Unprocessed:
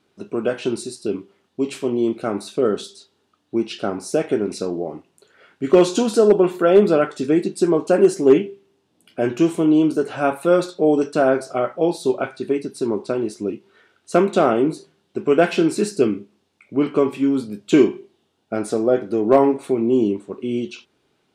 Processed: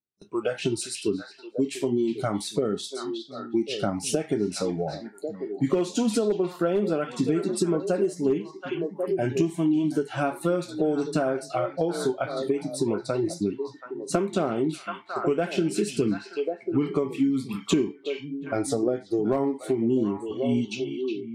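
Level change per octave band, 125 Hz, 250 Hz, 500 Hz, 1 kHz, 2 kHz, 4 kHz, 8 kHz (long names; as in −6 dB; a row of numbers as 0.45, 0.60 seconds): −1.5, −6.0, −8.0, −7.5, −7.0, −2.0, −0.5 decibels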